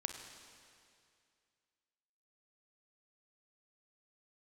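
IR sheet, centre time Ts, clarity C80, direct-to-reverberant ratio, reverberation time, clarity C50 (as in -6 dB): 47 ms, 7.0 dB, 5.0 dB, 2.4 s, 6.0 dB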